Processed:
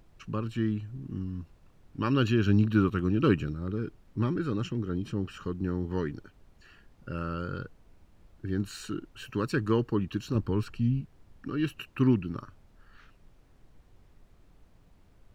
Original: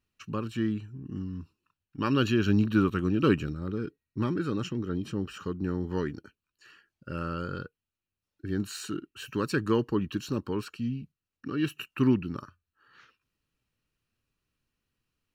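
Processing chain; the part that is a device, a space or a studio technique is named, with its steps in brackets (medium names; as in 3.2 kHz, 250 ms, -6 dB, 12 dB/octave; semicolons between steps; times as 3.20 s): car interior (peaking EQ 110 Hz +4.5 dB 0.71 oct; treble shelf 4.9 kHz -5 dB; brown noise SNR 24 dB); 10.35–11.01 s: bass shelf 150 Hz +10 dB; trim -1 dB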